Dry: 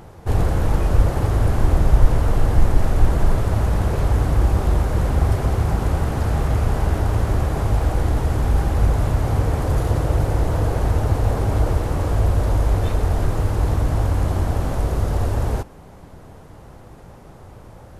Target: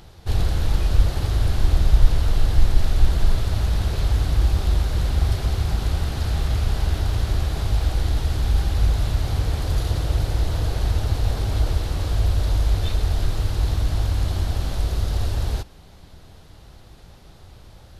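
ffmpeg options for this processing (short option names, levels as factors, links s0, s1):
-af "equalizer=f=125:t=o:w=1:g=-5,equalizer=f=250:t=o:w=1:g=-6,equalizer=f=500:t=o:w=1:g=-7,equalizer=f=1000:t=o:w=1:g=-7,equalizer=f=2000:t=o:w=1:g=-3,equalizer=f=4000:t=o:w=1:g=10,equalizer=f=8000:t=o:w=1:g=-3"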